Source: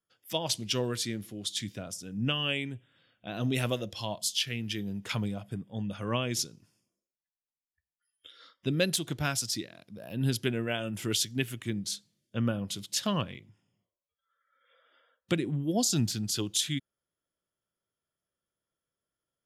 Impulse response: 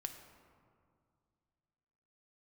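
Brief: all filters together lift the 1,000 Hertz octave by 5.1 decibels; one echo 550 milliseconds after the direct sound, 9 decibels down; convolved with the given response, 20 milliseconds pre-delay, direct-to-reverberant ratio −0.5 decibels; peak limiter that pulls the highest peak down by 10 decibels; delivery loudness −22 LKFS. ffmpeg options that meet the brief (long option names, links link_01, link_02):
-filter_complex "[0:a]equalizer=frequency=1000:width_type=o:gain=6.5,alimiter=limit=-22.5dB:level=0:latency=1,aecho=1:1:550:0.355,asplit=2[link_01][link_02];[1:a]atrim=start_sample=2205,adelay=20[link_03];[link_02][link_03]afir=irnorm=-1:irlink=0,volume=3dB[link_04];[link_01][link_04]amix=inputs=2:normalize=0,volume=9dB"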